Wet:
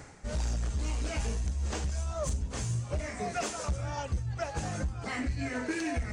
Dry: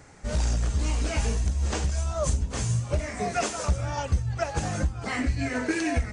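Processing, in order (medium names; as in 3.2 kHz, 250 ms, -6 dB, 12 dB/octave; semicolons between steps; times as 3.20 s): reverse; upward compressor, threshold -26 dBFS; reverse; saturation -18 dBFS, distortion -20 dB; trim -5 dB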